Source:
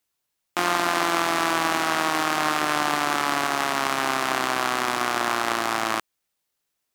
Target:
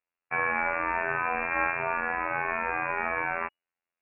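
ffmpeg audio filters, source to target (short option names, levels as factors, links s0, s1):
-af "asetrate=76293,aresample=44100,afftfilt=real='hypot(re,im)*cos(PI*b)':imag='0':win_size=2048:overlap=0.75,lowpass=f=2500:t=q:w=0.5098,lowpass=f=2500:t=q:w=0.6013,lowpass=f=2500:t=q:w=0.9,lowpass=f=2500:t=q:w=2.563,afreqshift=-2900"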